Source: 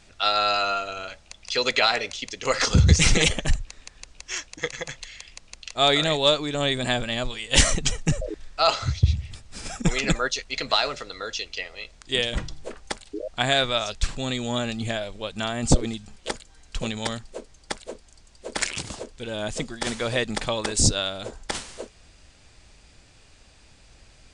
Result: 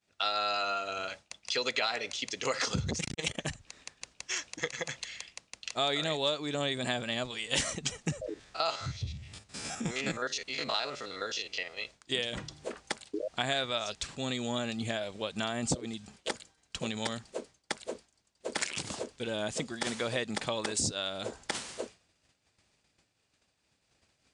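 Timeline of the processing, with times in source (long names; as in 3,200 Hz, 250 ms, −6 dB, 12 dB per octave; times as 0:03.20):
0:02.90–0:03.46: saturating transformer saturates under 380 Hz
0:08.29–0:11.77: spectrum averaged block by block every 50 ms
whole clip: downward expander −40 dBFS; downward compressor 2.5 to 1, threshold −32 dBFS; high-pass filter 120 Hz 12 dB per octave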